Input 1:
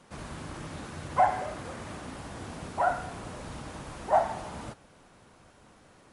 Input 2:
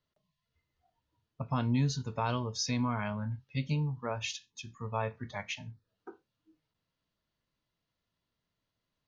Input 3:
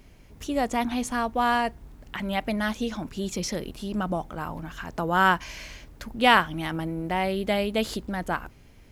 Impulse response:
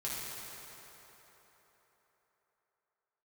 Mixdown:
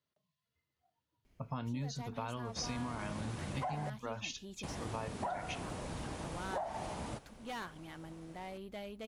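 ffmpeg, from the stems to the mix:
-filter_complex "[0:a]alimiter=limit=0.0944:level=0:latency=1:release=234,equalizer=f=1400:t=o:w=0.73:g=-4.5,adelay=2450,volume=0.891,asplit=3[s0][s1][s2];[s0]atrim=end=3.9,asetpts=PTS-STARTPTS,afade=t=out:st=3.896:d=0.004:c=hsin[s3];[s1]atrim=start=3.9:end=4.63,asetpts=PTS-STARTPTS,volume=0[s4];[s2]atrim=start=4.63,asetpts=PTS-STARTPTS,afade=t=in:d=0.004:c=hsin[s5];[s3][s4][s5]concat=n=3:v=0:a=1[s6];[1:a]highpass=97,volume=0.631[s7];[2:a]asoftclip=type=tanh:threshold=0.1,adelay=1250,volume=0.126[s8];[s6][s7][s8]amix=inputs=3:normalize=0,acompressor=threshold=0.0178:ratio=6"

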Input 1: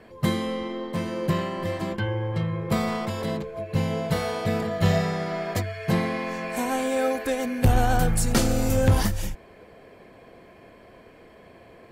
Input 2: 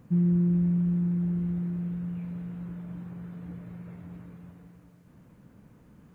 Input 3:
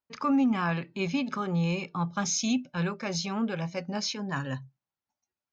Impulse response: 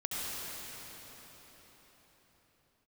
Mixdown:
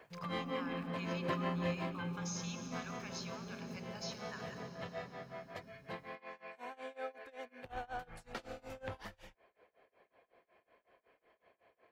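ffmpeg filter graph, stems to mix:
-filter_complex "[0:a]acrossover=split=440 4100:gain=0.158 1 0.1[s0][s1][s2];[s0][s1][s2]amix=inputs=3:normalize=0,tremolo=f=5.4:d=0.95,volume=0.668,afade=t=out:st=1.76:d=0.31:silence=0.316228[s3];[1:a]asoftclip=type=tanh:threshold=0.0596,volume=0.376,asplit=2[s4][s5];[s5]volume=0.299[s6];[2:a]equalizer=f=430:w=3.8:g=7,aeval=exprs='val(0)*gte(abs(val(0)),0.00335)':c=same,volume=0.237,asplit=2[s7][s8];[s8]volume=0.237[s9];[s4][s7]amix=inputs=2:normalize=0,highpass=960,acompressor=threshold=0.00631:ratio=6,volume=1[s10];[3:a]atrim=start_sample=2205[s11];[s6][s9]amix=inputs=2:normalize=0[s12];[s12][s11]afir=irnorm=-1:irlink=0[s13];[s3][s10][s13]amix=inputs=3:normalize=0"

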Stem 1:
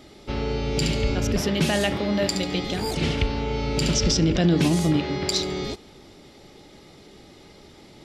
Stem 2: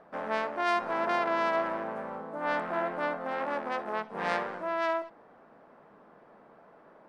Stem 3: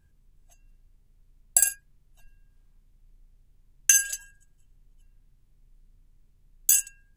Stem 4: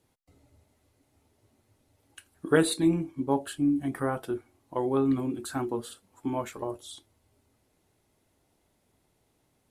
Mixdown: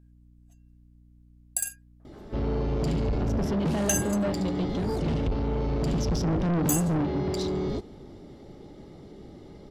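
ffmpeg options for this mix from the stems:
-filter_complex "[0:a]tiltshelf=f=970:g=8.5,bandreject=f=2500:w=14,asoftclip=type=tanh:threshold=0.106,adelay=2050,volume=0.668[s0];[1:a]acompressor=threshold=0.01:ratio=2,adelay=2000,volume=0.158[s1];[2:a]aeval=exprs='val(0)+0.00562*(sin(2*PI*60*n/s)+sin(2*PI*2*60*n/s)/2+sin(2*PI*3*60*n/s)/3+sin(2*PI*4*60*n/s)/4+sin(2*PI*5*60*n/s)/5)':c=same,volume=0.355[s2];[s0][s1][s2]amix=inputs=3:normalize=0"

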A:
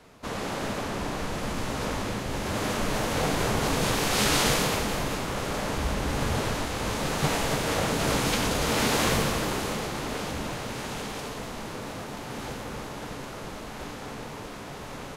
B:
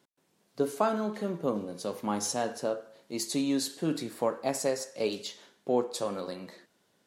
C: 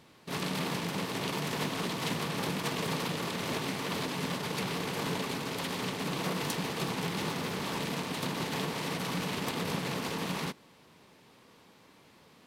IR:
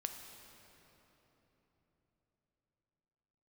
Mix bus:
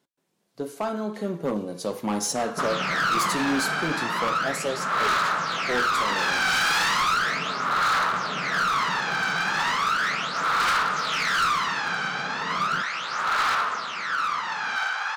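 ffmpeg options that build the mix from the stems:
-filter_complex "[0:a]highpass=f=1300:t=q:w=5.3,aphaser=in_gain=1:out_gain=1:delay=1.3:decay=0.7:speed=0.36:type=sinusoidal,lowpass=f=5600:w=0.5412,lowpass=f=5600:w=1.3066,adelay=2350,volume=0.708,asplit=2[s0][s1];[s1]volume=0.316[s2];[1:a]volume=1.06[s3];[2:a]acompressor=threshold=0.00794:ratio=5,lowpass=f=660:t=q:w=4.1,equalizer=f=180:w=1.1:g=5.5,adelay=2300,volume=0.944[s4];[3:a]atrim=start_sample=2205[s5];[s2][s5]afir=irnorm=-1:irlink=0[s6];[s0][s3][s4][s6]amix=inputs=4:normalize=0,dynaudnorm=f=250:g=9:m=3.55,asoftclip=type=hard:threshold=0.168,flanger=delay=4.5:depth=1.6:regen=-69:speed=0.81:shape=sinusoidal"

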